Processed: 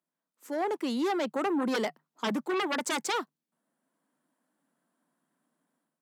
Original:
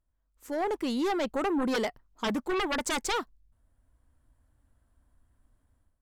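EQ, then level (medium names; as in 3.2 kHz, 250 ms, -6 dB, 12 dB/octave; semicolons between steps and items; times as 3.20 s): Chebyshev high-pass 150 Hz, order 10; 0.0 dB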